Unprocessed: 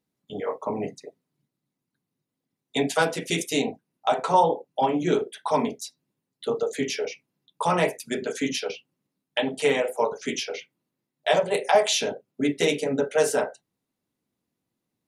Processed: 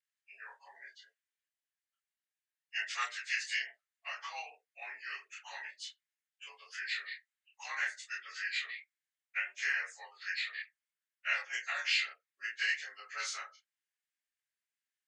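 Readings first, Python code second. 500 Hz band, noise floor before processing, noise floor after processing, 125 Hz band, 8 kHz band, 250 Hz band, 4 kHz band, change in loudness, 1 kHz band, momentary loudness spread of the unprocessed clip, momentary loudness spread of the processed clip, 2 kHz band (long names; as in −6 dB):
−37.5 dB, −84 dBFS, below −85 dBFS, below −40 dB, −14.0 dB, below −40 dB, −8.5 dB, −11.5 dB, −20.5 dB, 12 LU, 17 LU, −2.5 dB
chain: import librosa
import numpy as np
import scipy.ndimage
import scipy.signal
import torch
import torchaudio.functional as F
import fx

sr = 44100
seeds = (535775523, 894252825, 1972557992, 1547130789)

y = fx.partial_stretch(x, sr, pct=90)
y = fx.chorus_voices(y, sr, voices=2, hz=0.66, base_ms=27, depth_ms=2.4, mix_pct=40)
y = fx.ladder_highpass(y, sr, hz=1500.0, resonance_pct=50)
y = F.gain(torch.from_numpy(y), 5.5).numpy()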